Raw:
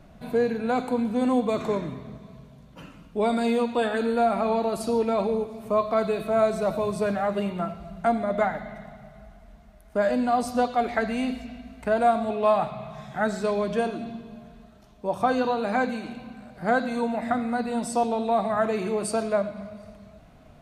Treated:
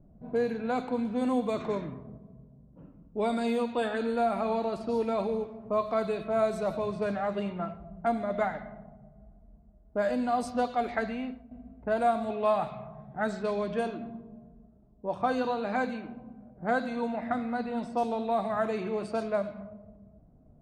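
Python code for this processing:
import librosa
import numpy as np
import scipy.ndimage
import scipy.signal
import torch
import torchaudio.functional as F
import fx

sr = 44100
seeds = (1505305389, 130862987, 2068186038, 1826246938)

y = fx.edit(x, sr, fx.fade_out_to(start_s=11.03, length_s=0.48, floor_db=-10.5), tone=tone)
y = fx.env_lowpass(y, sr, base_hz=380.0, full_db=-19.5)
y = y * 10.0 ** (-5.0 / 20.0)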